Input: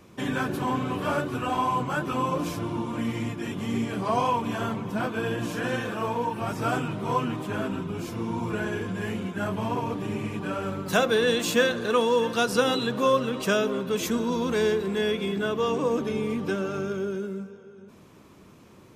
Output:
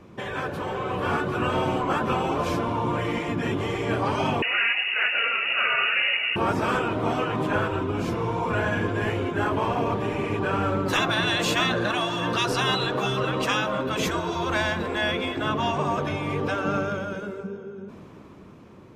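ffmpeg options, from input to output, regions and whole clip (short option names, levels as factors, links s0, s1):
-filter_complex "[0:a]asettb=1/sr,asplit=3[s0][s1][s2];[s0]atrim=end=4.424[s3];[s1]atrim=start=4.42:end=6.36,asetpts=PTS-STARTPTS,afade=t=in:d=0.004:c=qsin,afade=t=out:st=1.936:d=0.004:c=qsin,lowpass=f=2600:t=q:w=0.5098,lowpass=f=2600:t=q:w=0.6013,lowpass=f=2600:t=q:w=0.9,lowpass=f=2600:t=q:w=2.563,afreqshift=-3000,aemphasis=mode=production:type=riaa[s4];[s2]atrim=start=6.356[s5];[s3][s4]acrossfade=d=0.004:c1=hsin:c2=qsin[s6];[s6][s5]acrossfade=d=0.004:c1=qsin:c2=hsin,lowpass=f=1800:p=1,afftfilt=real='re*lt(hypot(re,im),0.158)':imag='im*lt(hypot(re,im),0.158)':win_size=1024:overlap=0.75,dynaudnorm=f=260:g=9:m=2,volume=1.68"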